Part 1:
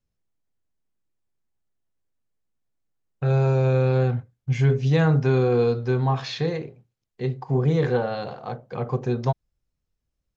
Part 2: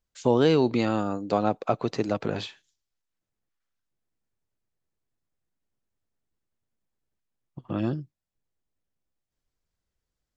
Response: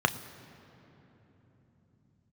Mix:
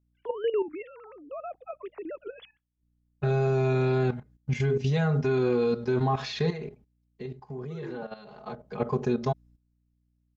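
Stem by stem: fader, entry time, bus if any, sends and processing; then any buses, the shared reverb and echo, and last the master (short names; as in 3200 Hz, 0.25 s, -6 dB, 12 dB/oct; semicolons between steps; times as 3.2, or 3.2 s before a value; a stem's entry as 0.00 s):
+0.5 dB, 0.00 s, no send, comb 4.8 ms, depth 96%; hum 60 Hz, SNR 33 dB; auto duck -12 dB, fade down 0.50 s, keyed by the second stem
-6.0 dB, 0.00 s, no send, sine-wave speech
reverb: off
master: gate -48 dBFS, range -9 dB; level quantiser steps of 12 dB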